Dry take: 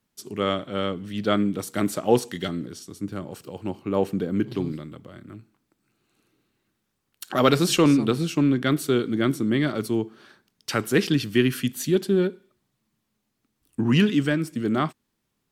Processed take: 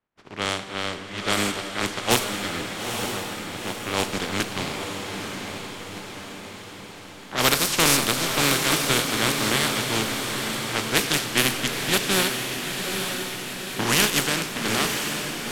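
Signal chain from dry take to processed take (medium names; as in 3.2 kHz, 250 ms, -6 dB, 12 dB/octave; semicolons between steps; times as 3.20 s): spectral contrast reduction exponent 0.28; level-controlled noise filter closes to 1.7 kHz, open at -16 dBFS; on a send: echo that smears into a reverb 902 ms, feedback 59%, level -5.5 dB; on the sum: Schroeder reverb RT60 3.4 s, combs from 32 ms, DRR 10 dB; trim -1.5 dB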